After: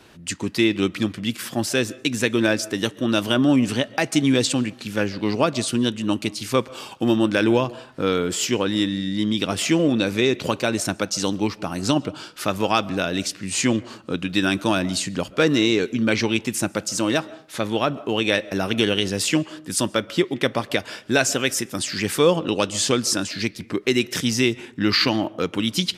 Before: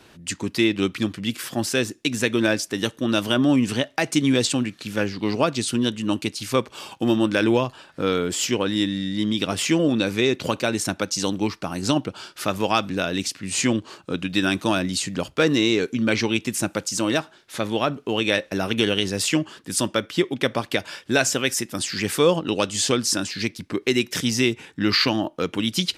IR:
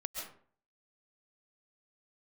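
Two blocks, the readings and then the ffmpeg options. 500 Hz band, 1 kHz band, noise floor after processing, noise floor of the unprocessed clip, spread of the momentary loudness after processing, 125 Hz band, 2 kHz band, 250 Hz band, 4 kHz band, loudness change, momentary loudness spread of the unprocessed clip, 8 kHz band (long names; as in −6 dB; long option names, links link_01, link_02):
+1.0 dB, +1.0 dB, −45 dBFS, −53 dBFS, 7 LU, +1.0 dB, +0.5 dB, +1.0 dB, +0.5 dB, +1.0 dB, 7 LU, +0.5 dB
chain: -filter_complex "[0:a]asplit=2[link_01][link_02];[1:a]atrim=start_sample=2205,highshelf=frequency=3300:gain=-11[link_03];[link_02][link_03]afir=irnorm=-1:irlink=0,volume=-15.5dB[link_04];[link_01][link_04]amix=inputs=2:normalize=0"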